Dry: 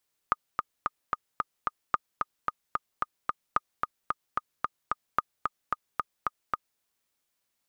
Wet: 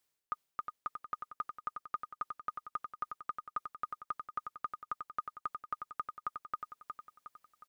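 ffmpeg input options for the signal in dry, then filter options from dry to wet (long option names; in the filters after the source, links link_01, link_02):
-f lavfi -i "aevalsrc='pow(10,(-9.5-4*gte(mod(t,6*60/222),60/222))/20)*sin(2*PI*1230*mod(t,60/222))*exp(-6.91*mod(t,60/222)/0.03)':duration=6.48:sample_rate=44100"
-af "areverse,acompressor=threshold=-36dB:ratio=6,areverse,aecho=1:1:362|724|1086|1448|1810|2172:0.501|0.241|0.115|0.0554|0.0266|0.0128"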